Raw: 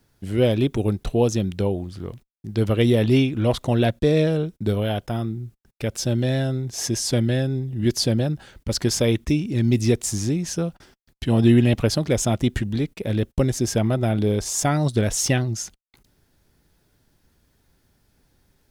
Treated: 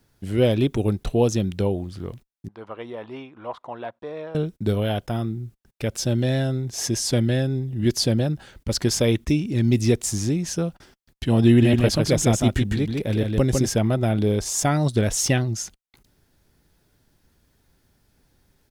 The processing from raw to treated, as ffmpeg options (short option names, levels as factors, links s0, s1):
-filter_complex "[0:a]asettb=1/sr,asplit=3[s0][s1][s2];[s0]atrim=end=2.484[s3];[s1]atrim=start=2.48:end=4.35,asetpts=PTS-STARTPTS,afade=t=in:d=0.004:c=qsin,afade=t=out:st=1.866:d=0.004:c=qsin,bandpass=f=1000:t=q:w=2.9[s4];[s2]atrim=start=4.346[s5];[s3][s4]acrossfade=d=0.004:c1=hsin:c2=qsin[s6];[s6][s5]acrossfade=d=0.004:c1=qsin:c2=hsin,asplit=3[s7][s8][s9];[s7]afade=t=out:st=11.61:d=0.02[s10];[s8]aecho=1:1:153:0.668,afade=t=in:st=11.61:d=0.02,afade=t=out:st=13.72:d=0.02[s11];[s9]afade=t=in:st=13.72:d=0.02[s12];[s10][s11][s12]amix=inputs=3:normalize=0"